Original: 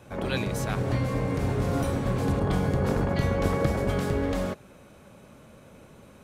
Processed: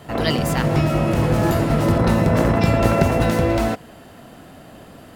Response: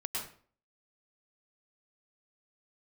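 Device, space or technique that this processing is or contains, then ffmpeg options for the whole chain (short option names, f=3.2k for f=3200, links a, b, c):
nightcore: -af "asetrate=53361,aresample=44100,volume=8.5dB"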